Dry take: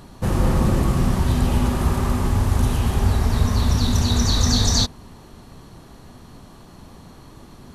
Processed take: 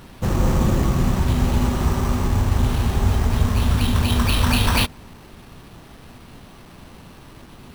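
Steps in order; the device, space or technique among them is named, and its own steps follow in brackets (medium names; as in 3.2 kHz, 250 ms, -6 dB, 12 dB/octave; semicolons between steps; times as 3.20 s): early 8-bit sampler (sample-rate reducer 7 kHz, jitter 0%; bit crusher 8-bit)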